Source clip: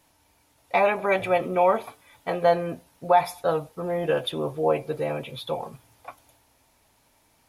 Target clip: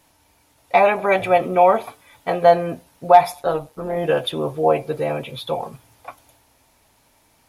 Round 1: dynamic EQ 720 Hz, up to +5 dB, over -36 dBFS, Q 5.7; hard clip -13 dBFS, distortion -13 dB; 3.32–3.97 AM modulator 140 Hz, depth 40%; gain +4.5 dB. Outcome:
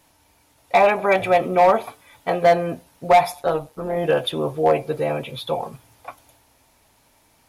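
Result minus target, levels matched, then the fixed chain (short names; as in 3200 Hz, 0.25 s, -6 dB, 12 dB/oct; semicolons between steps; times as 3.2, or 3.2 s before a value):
hard clip: distortion +22 dB
dynamic EQ 720 Hz, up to +5 dB, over -36 dBFS, Q 5.7; hard clip -6 dBFS, distortion -35 dB; 3.32–3.97 AM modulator 140 Hz, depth 40%; gain +4.5 dB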